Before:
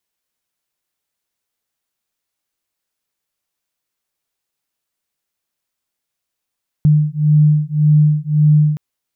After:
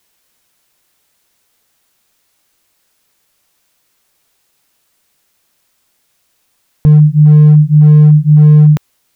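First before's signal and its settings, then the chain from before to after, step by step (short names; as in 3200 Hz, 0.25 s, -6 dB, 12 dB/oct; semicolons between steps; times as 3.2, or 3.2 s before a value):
beating tones 150 Hz, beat 1.8 Hz, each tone -12.5 dBFS 1.92 s
in parallel at -6 dB: overloaded stage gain 10.5 dB; on the sum: dynamic EQ 180 Hz, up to -7 dB, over -23 dBFS, Q 0.73; maximiser +15.5 dB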